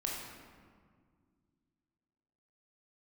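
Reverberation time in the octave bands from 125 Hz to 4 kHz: 3.0, 2.9, 2.0, 1.8, 1.4, 1.0 s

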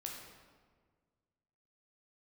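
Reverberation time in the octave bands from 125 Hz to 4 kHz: 2.2, 1.9, 1.8, 1.5, 1.2, 1.0 s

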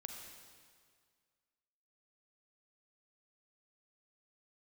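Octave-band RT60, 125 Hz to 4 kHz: 1.9, 1.9, 1.9, 1.9, 1.8, 1.8 s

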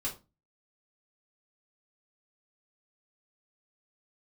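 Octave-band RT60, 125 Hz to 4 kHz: 0.45, 0.40, 0.30, 0.25, 0.20, 0.20 s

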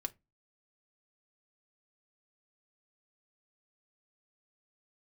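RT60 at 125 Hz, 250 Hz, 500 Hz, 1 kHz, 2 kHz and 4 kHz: 0.35, 0.30, 0.20, 0.20, 0.20, 0.15 s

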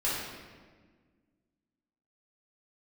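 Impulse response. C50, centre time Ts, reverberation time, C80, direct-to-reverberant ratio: -0.5 dB, 89 ms, 1.5 s, 2.0 dB, -8.5 dB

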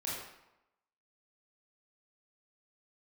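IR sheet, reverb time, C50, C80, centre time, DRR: 0.90 s, 0.0 dB, 3.0 dB, 71 ms, -7.0 dB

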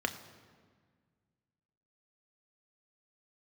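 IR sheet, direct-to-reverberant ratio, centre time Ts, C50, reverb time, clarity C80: 6.5 dB, 13 ms, 12.5 dB, 1.7 s, 13.5 dB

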